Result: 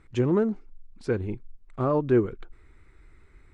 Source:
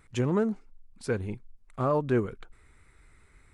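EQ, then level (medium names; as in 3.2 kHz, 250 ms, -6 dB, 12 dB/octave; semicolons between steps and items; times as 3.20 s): distance through air 84 m; bass shelf 79 Hz +6.5 dB; peaking EQ 340 Hz +7.5 dB 0.56 oct; 0.0 dB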